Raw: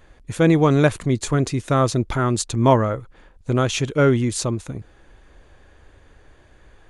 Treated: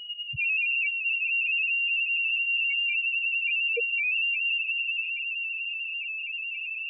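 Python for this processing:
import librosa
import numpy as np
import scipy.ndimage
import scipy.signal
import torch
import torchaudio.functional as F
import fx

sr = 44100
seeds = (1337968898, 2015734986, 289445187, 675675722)

p1 = 10.0 ** (-6.5 / 20.0) * np.tanh(x / 10.0 ** (-6.5 / 20.0))
p2 = p1 + fx.echo_swell(p1, sr, ms=96, loudest=8, wet_db=-15.0, dry=0)
p3 = fx.level_steps(p2, sr, step_db=24)
p4 = fx.freq_invert(p3, sr, carrier_hz=2900)
p5 = fx.low_shelf(p4, sr, hz=370.0, db=8.5)
p6 = fx.echo_diffused(p5, sr, ms=456, feedback_pct=61, wet_db=-15.5)
p7 = fx.spec_topn(p6, sr, count=1)
p8 = fx.peak_eq(p7, sr, hz=280.0, db=12.0, octaves=2.5)
p9 = fx.env_flatten(p8, sr, amount_pct=70)
y = F.gain(torch.from_numpy(p9), 3.5).numpy()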